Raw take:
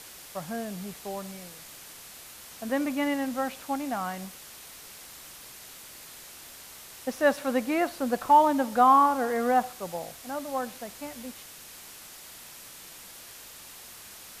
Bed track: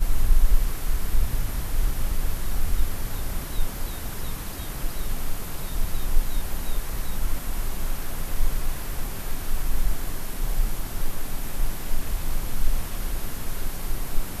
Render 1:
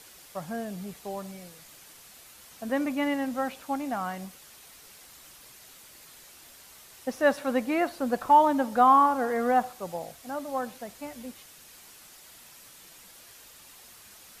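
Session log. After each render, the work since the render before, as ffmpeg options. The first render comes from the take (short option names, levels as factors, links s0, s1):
-af "afftdn=nr=6:nf=-47"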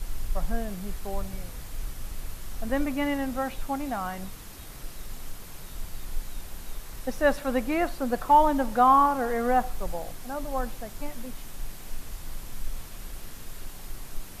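-filter_complex "[1:a]volume=0.282[s0];[0:a][s0]amix=inputs=2:normalize=0"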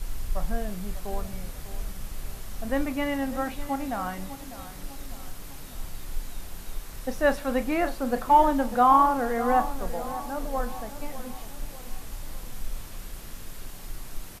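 -filter_complex "[0:a]asplit=2[s0][s1];[s1]adelay=33,volume=0.251[s2];[s0][s2]amix=inputs=2:normalize=0,asplit=2[s3][s4];[s4]adelay=599,lowpass=f=2000:p=1,volume=0.224,asplit=2[s5][s6];[s6]adelay=599,lowpass=f=2000:p=1,volume=0.51,asplit=2[s7][s8];[s8]adelay=599,lowpass=f=2000:p=1,volume=0.51,asplit=2[s9][s10];[s10]adelay=599,lowpass=f=2000:p=1,volume=0.51,asplit=2[s11][s12];[s12]adelay=599,lowpass=f=2000:p=1,volume=0.51[s13];[s3][s5][s7][s9][s11][s13]amix=inputs=6:normalize=0"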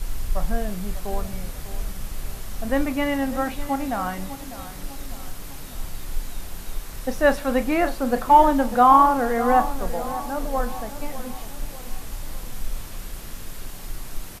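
-af "volume=1.68"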